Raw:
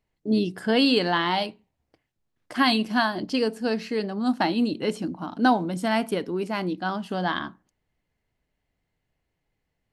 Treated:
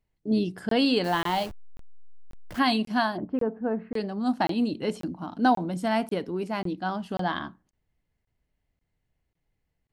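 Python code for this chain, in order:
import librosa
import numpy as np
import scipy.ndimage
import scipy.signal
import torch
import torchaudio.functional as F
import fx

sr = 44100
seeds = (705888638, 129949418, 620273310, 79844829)

y = fx.delta_hold(x, sr, step_db=-33.5, at=(1.04, 2.59))
y = fx.dynamic_eq(y, sr, hz=740.0, q=1.6, threshold_db=-36.0, ratio=4.0, max_db=4)
y = fx.lowpass(y, sr, hz=1500.0, slope=24, at=(3.16, 3.94), fade=0.02)
y = fx.low_shelf(y, sr, hz=150.0, db=8.0)
y = fx.buffer_crackle(y, sr, first_s=0.69, period_s=0.54, block=1024, kind='zero')
y = y * 10.0 ** (-4.5 / 20.0)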